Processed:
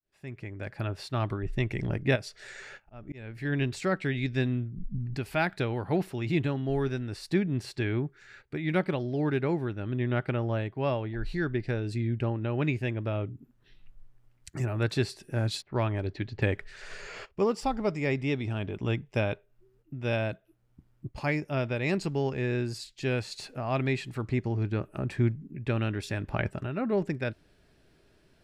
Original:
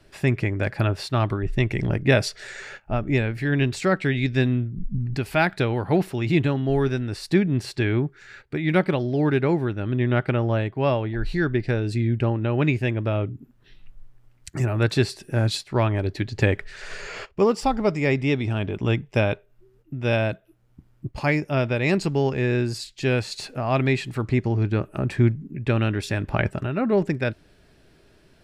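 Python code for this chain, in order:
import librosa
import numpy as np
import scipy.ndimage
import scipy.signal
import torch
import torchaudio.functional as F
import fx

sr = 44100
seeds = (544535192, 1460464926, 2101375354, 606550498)

y = fx.fade_in_head(x, sr, length_s=1.27)
y = fx.auto_swell(y, sr, attack_ms=407.0, at=(2.15, 3.44), fade=0.02)
y = fx.env_lowpass(y, sr, base_hz=1200.0, full_db=-17.0, at=(15.62, 16.42))
y = y * librosa.db_to_amplitude(-7.0)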